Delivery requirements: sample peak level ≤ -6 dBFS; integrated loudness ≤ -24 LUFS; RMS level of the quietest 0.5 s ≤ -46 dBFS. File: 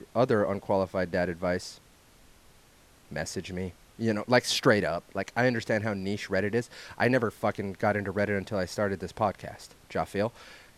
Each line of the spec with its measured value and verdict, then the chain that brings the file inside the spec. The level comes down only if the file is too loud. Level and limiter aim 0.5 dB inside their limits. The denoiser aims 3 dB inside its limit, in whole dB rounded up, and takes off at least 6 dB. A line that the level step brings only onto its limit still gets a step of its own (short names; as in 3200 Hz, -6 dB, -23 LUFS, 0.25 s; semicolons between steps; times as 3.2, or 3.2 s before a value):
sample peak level -8.0 dBFS: OK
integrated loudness -29.0 LUFS: OK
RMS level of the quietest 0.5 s -58 dBFS: OK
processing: none